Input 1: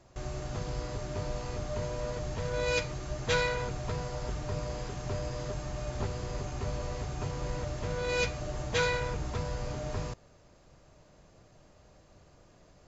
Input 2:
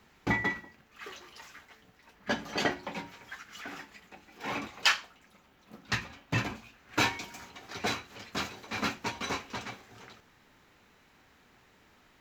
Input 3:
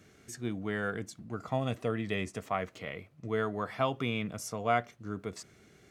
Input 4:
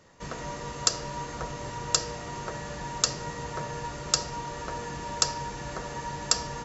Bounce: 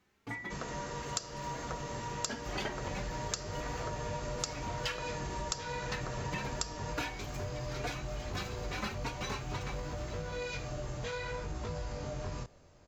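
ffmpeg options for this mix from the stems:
-filter_complex "[0:a]alimiter=level_in=1.33:limit=0.0631:level=0:latency=1:release=30,volume=0.75,flanger=delay=18.5:depth=5.2:speed=0.64,adelay=2300,volume=1.19[s0];[1:a]dynaudnorm=f=120:g=21:m=4.22,asplit=2[s1][s2];[s2]adelay=3.6,afreqshift=2.4[s3];[s1][s3]amix=inputs=2:normalize=1,volume=0.316[s4];[2:a]volume=0.112[s5];[3:a]adelay=300,volume=0.75[s6];[s0][s4][s5][s6]amix=inputs=4:normalize=0,acompressor=threshold=0.02:ratio=4"

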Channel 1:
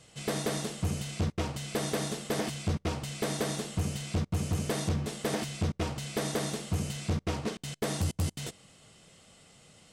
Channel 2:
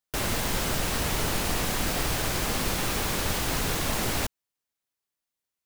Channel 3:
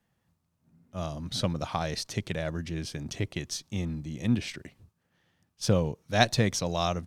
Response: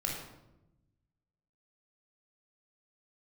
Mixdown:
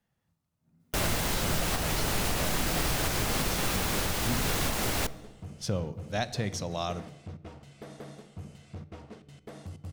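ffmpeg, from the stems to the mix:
-filter_complex "[0:a]highshelf=f=3200:g=-11,adelay=1650,volume=0.211,asplit=2[s0][s1];[s1]volume=0.178[s2];[1:a]adelay=800,volume=1.12,asplit=2[s3][s4];[s4]volume=0.0944[s5];[2:a]volume=0.531,asplit=2[s6][s7];[s7]volume=0.168[s8];[3:a]atrim=start_sample=2205[s9];[s2][s5][s8]amix=inputs=3:normalize=0[s10];[s10][s9]afir=irnorm=-1:irlink=0[s11];[s0][s3][s6][s11]amix=inputs=4:normalize=0,alimiter=limit=0.133:level=0:latency=1:release=338"

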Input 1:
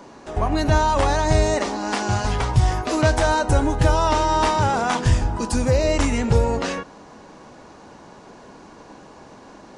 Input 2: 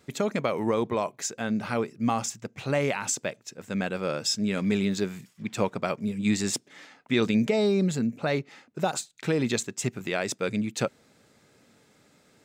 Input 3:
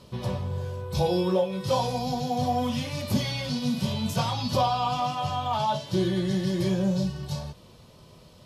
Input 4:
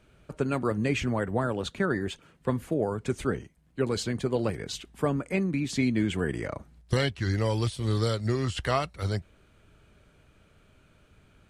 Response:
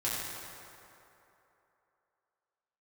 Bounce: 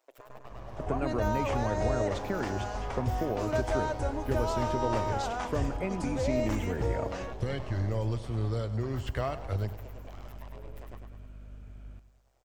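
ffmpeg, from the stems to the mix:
-filter_complex "[0:a]adelay=500,volume=0.2[s0];[1:a]equalizer=f=1900:w=0.97:g=-8,aeval=exprs='abs(val(0))':c=same,tremolo=f=130:d=0.824,volume=0.531,asplit=2[s1][s2];[s2]volume=0.251[s3];[2:a]volume=28.2,asoftclip=hard,volume=0.0355,adelay=450,volume=0.168,asplit=2[s4][s5];[s5]volume=0.398[s6];[3:a]lowshelf=f=240:g=11,acompressor=threshold=0.0447:ratio=3,aeval=exprs='val(0)+0.00708*(sin(2*PI*50*n/s)+sin(2*PI*2*50*n/s)/2+sin(2*PI*3*50*n/s)/3+sin(2*PI*4*50*n/s)/4+sin(2*PI*5*50*n/s)/5)':c=same,adelay=500,volume=0.75,asplit=2[s7][s8];[s8]volume=0.188[s9];[s1][s4]amix=inputs=2:normalize=0,highpass=f=350:w=0.5412,highpass=f=350:w=1.3066,acompressor=threshold=0.00178:ratio=3,volume=1[s10];[4:a]atrim=start_sample=2205[s11];[s6][s11]afir=irnorm=-1:irlink=0[s12];[s3][s9]amix=inputs=2:normalize=0,aecho=0:1:101|202|303|404|505|606|707|808:1|0.52|0.27|0.141|0.0731|0.038|0.0198|0.0103[s13];[s0][s7][s10][s12][s13]amix=inputs=5:normalize=0,equalizer=f=160:t=o:w=0.67:g=-8,equalizer=f=630:t=o:w=0.67:g=5,equalizer=f=4000:t=o:w=0.67:g=-5,equalizer=f=10000:t=o:w=0.67:g=-8"

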